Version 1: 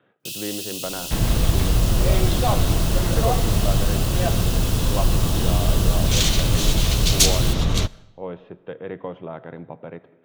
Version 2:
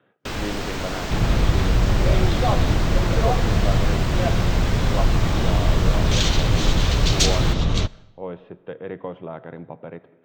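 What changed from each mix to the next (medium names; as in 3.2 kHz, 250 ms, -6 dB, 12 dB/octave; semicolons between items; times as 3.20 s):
first sound: remove brick-wall FIR high-pass 2.5 kHz; master: add boxcar filter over 4 samples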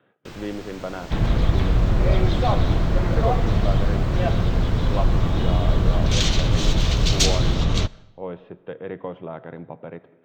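first sound -12.0 dB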